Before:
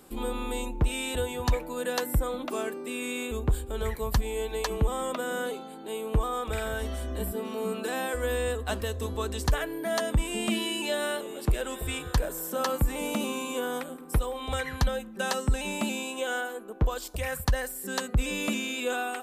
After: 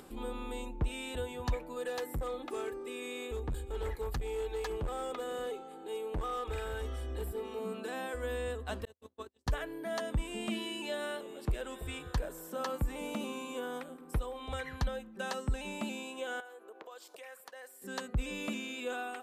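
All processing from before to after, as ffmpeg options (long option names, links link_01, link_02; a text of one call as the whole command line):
ffmpeg -i in.wav -filter_complex "[0:a]asettb=1/sr,asplit=3[link_01][link_02][link_03];[link_01]atrim=end=1.764[link_04];[link_02]atrim=start=1.76:end=7.59,asetpts=PTS-STARTPTS,afade=type=in:duration=0.004:curve=qsin,afade=type=out:start_time=5.826:duration=0.004:curve=qsin,aecho=1:1:2.4:0.63,atrim=end_sample=257103,asoftclip=type=hard:threshold=-24dB,aecho=1:1:567:0.0631,atrim=end_sample=257103[link_05];[link_03]atrim=start=7.586[link_06];[link_04][link_05]acrossfade=duration=0.004:curve1=hsin:curve2=qsin[link_07];[link_07][link_06]acrossfade=duration=0.004:curve1=qsin:curve2=hsin,asettb=1/sr,asplit=3[link_08][link_09][link_10];[link_08]atrim=end=8.854[link_11];[link_09]atrim=start=8.85:end=9.47,asetpts=PTS-STARTPTS,afade=type=in:duration=0.004:curve=qsin,afade=type=out:start_time=0.616:duration=0.004:curve=qsin,agate=range=-50dB:threshold=-29dB:ratio=16:release=100:detection=peak,highpass=130[link_12];[link_10]atrim=start=9.466[link_13];[link_11][link_12]acrossfade=duration=0.004:curve1=hsin:curve2=qsin[link_14];[link_14][link_13]acrossfade=duration=0.004:curve1=qsin:curve2=hsin,asettb=1/sr,asplit=3[link_15][link_16][link_17];[link_15]atrim=end=16.404[link_18];[link_16]atrim=start=16.4:end=17.82,asetpts=PTS-STARTPTS,afade=type=in:duration=0.004:curve=qsin,afade=type=out:start_time=1.416:duration=0.004:curve=qsin,highpass=frequency=380:width=0.5412,highpass=frequency=380:width=1.3066,acompressor=threshold=-41dB:ratio=3:attack=3.2:release=140:knee=1:detection=peak[link_19];[link_17]atrim=start=17.816[link_20];[link_18][link_19]acrossfade=duration=0.004:curve1=hsin:curve2=qsin[link_21];[link_21][link_20]acrossfade=duration=0.004:curve1=qsin:curve2=hsin,acompressor=mode=upward:threshold=-37dB:ratio=2.5,highshelf=frequency=6600:gain=-8.5,volume=-7.5dB" out.wav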